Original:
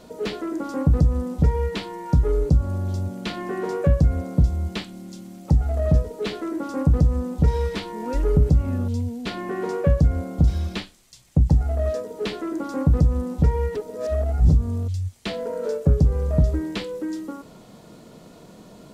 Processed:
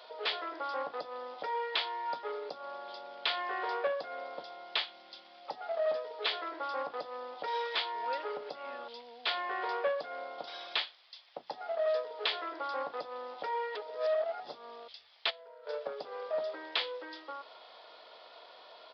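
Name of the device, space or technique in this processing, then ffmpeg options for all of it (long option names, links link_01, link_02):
musical greeting card: -filter_complex "[0:a]asplit=3[link_01][link_02][link_03];[link_01]afade=type=out:start_time=15.29:duration=0.02[link_04];[link_02]agate=range=-17dB:threshold=-24dB:ratio=16:detection=peak,afade=type=in:start_time=15.29:duration=0.02,afade=type=out:start_time=15.72:duration=0.02[link_05];[link_03]afade=type=in:start_time=15.72:duration=0.02[link_06];[link_04][link_05][link_06]amix=inputs=3:normalize=0,aresample=11025,aresample=44100,highpass=frequency=640:width=0.5412,highpass=frequency=640:width=1.3066,equalizer=frequency=3400:width_type=o:width=0.22:gain=6.5"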